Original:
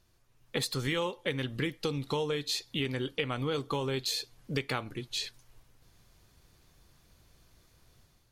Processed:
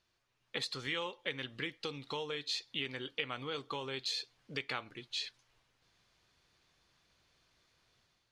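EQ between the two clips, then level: LPF 3700 Hz 12 dB/oct; tilt +3 dB/oct; -5.5 dB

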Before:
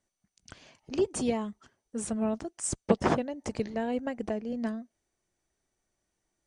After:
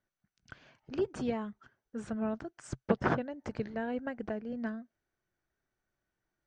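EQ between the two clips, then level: air absorption 150 m; bell 130 Hz +6 dB 0.4 oct; bell 1500 Hz +9.5 dB 0.46 oct; -4.5 dB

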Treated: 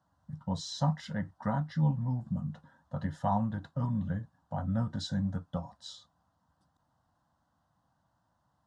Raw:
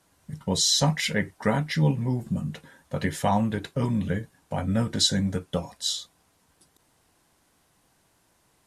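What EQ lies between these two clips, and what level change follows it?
HPF 63 Hz; tape spacing loss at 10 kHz 27 dB; fixed phaser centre 970 Hz, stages 4; -2.5 dB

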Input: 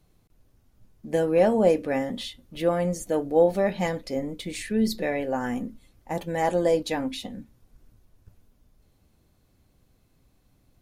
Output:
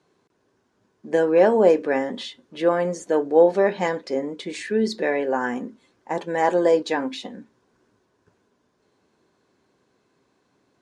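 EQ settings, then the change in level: speaker cabinet 260–7800 Hz, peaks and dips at 400 Hz +8 dB, 1000 Hz +8 dB, 1600 Hz +8 dB; low shelf 420 Hz +3 dB; +1.0 dB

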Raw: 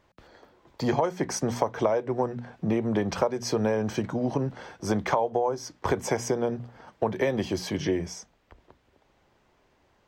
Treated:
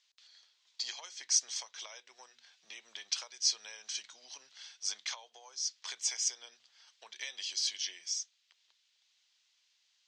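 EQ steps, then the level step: Butterworth band-pass 5100 Hz, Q 1.2; air absorption 56 m; high shelf 5000 Hz +6.5 dB; +5.5 dB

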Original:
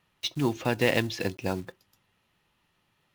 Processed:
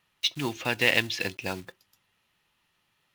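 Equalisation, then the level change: tilt shelf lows -4 dB; dynamic EQ 2600 Hz, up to +6 dB, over -44 dBFS, Q 0.99; -2.0 dB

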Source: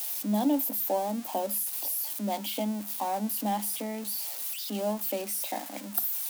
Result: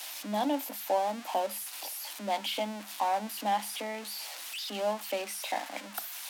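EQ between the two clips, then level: band-pass 1800 Hz, Q 0.64; +6.0 dB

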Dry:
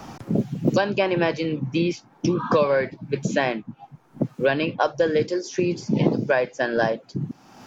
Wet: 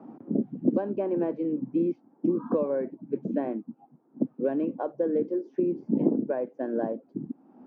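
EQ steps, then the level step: ladder band-pass 300 Hz, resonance 50%; low shelf 190 Hz -6 dB; +7.5 dB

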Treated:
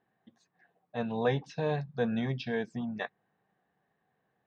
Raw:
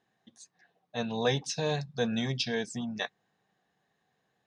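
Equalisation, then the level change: LPF 2000 Hz 12 dB/oct; 0.0 dB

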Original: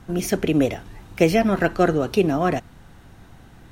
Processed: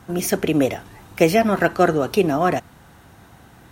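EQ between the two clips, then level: HPF 60 Hz; bell 970 Hz +5 dB 2.3 oct; high shelf 7100 Hz +9.5 dB; -1.0 dB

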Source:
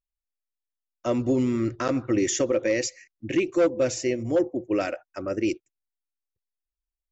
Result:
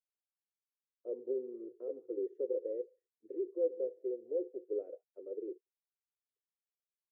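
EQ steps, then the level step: Butterworth band-pass 440 Hz, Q 4.8; -3.5 dB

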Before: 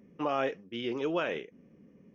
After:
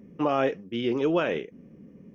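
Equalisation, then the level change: low shelf 470 Hz +7 dB; +3.0 dB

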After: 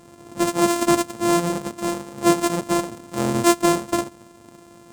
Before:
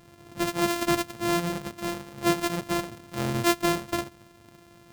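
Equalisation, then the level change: graphic EQ 250/500/1000/8000 Hz +8/+6/+6/+10 dB; 0.0 dB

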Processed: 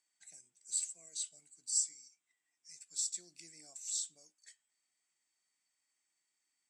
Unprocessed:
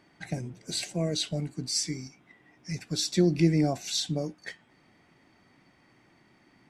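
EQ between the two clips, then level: band-pass 7800 Hz, Q 7.9; +5.5 dB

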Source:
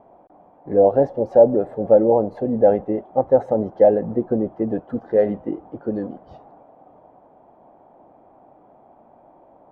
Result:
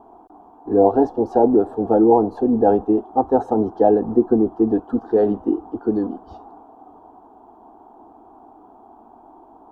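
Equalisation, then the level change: fixed phaser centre 560 Hz, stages 6; +7.5 dB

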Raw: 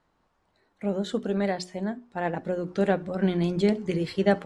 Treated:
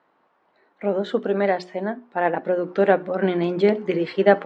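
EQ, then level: BPF 320–2500 Hz; +8.5 dB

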